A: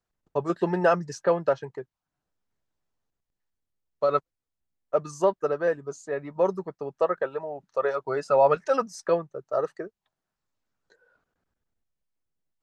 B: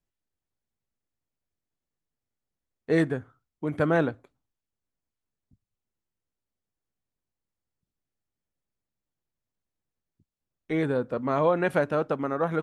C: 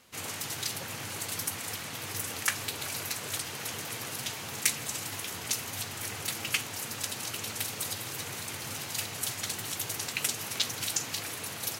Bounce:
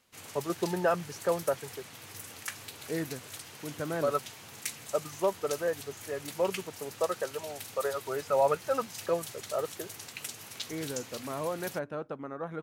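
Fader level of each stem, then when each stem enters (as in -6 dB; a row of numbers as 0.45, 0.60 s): -6.0, -11.0, -9.5 dB; 0.00, 0.00, 0.00 s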